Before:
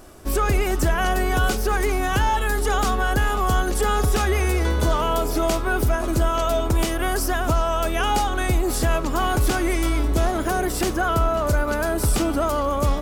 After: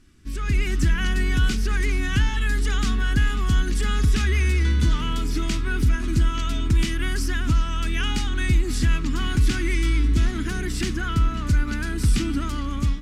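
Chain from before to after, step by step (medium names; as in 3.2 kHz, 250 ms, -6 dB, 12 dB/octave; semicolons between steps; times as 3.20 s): distance through air 66 m; level rider gain up to 11 dB; FFT filter 260 Hz 0 dB, 620 Hz -27 dB, 1.9 kHz -1 dB; trim -7 dB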